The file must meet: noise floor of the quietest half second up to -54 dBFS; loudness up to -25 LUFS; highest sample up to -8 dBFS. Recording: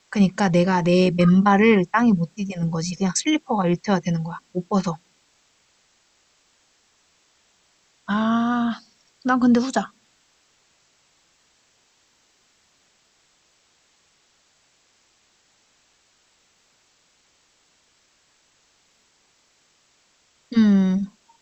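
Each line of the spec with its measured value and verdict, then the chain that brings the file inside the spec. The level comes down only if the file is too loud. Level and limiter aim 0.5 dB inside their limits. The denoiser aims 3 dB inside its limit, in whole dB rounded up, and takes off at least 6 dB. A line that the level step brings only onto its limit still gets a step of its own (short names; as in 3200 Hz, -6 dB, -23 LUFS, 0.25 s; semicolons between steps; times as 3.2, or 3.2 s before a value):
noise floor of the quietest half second -63 dBFS: OK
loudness -20.5 LUFS: fail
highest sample -3.5 dBFS: fail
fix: gain -5 dB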